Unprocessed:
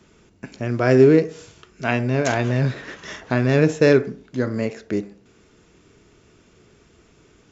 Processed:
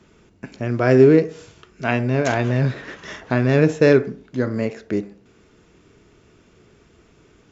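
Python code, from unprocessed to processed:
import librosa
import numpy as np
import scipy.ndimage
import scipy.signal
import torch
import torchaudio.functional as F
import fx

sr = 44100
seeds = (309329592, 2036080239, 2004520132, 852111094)

y = fx.high_shelf(x, sr, hz=5200.0, db=-6.5)
y = y * 10.0 ** (1.0 / 20.0)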